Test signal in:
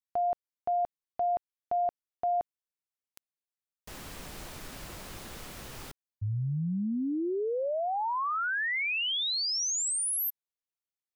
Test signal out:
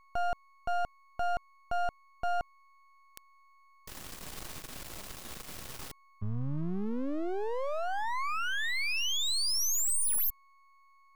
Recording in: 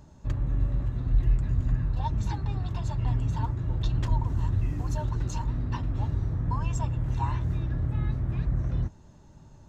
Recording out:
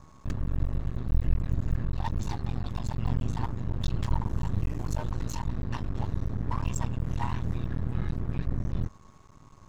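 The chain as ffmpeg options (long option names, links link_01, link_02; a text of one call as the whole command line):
ffmpeg -i in.wav -af "highshelf=frequency=3300:gain=4.5,aeval=exprs='val(0)+0.00141*sin(2*PI*1100*n/s)':channel_layout=same,aeval=exprs='max(val(0),0)':channel_layout=same,volume=1.5dB" out.wav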